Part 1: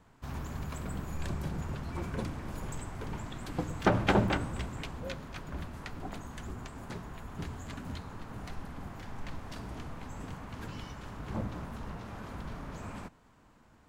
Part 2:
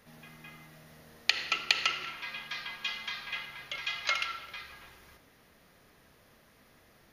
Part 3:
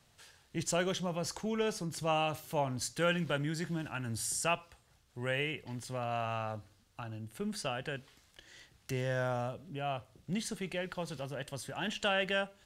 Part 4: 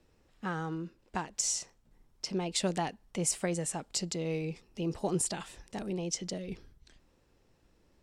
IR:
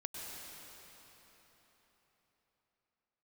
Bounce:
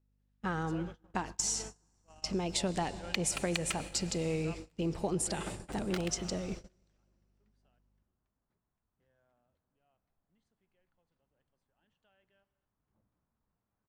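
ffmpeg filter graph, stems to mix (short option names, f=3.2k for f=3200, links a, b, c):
-filter_complex "[0:a]adelay=1600,volume=-18.5dB[a];[1:a]aeval=exprs='val(0)*gte(abs(val(0)),0.0841)':c=same,adelay=1850,volume=-4.5dB,asplit=2[b][c];[c]volume=-8dB[d];[2:a]highpass=160,volume=-17dB,asplit=3[e][f][g];[e]atrim=end=7.79,asetpts=PTS-STARTPTS,afade=t=out:st=7.786:d=0.004:c=hsin[h];[f]atrim=start=7.79:end=9,asetpts=PTS-STARTPTS,volume=0[i];[g]atrim=start=9,asetpts=PTS-STARTPTS,afade=t=in:d=0.004:c=hsin[j];[h][i][j]concat=n=3:v=0:a=1,asplit=2[k][l];[l]volume=-14dB[m];[3:a]crystalizer=i=1.5:c=0,aeval=exprs='val(0)+0.00316*(sin(2*PI*50*n/s)+sin(2*PI*2*50*n/s)/2+sin(2*PI*3*50*n/s)/3+sin(2*PI*4*50*n/s)/4+sin(2*PI*5*50*n/s)/5)':c=same,volume=0dB,asplit=2[n][o];[o]volume=-10.5dB[p];[4:a]atrim=start_sample=2205[q];[d][m][p]amix=inputs=3:normalize=0[r];[r][q]afir=irnorm=-1:irlink=0[s];[a][b][k][n][s]amix=inputs=5:normalize=0,lowpass=f=3k:p=1,agate=range=-25dB:threshold=-41dB:ratio=16:detection=peak,acompressor=threshold=-28dB:ratio=6"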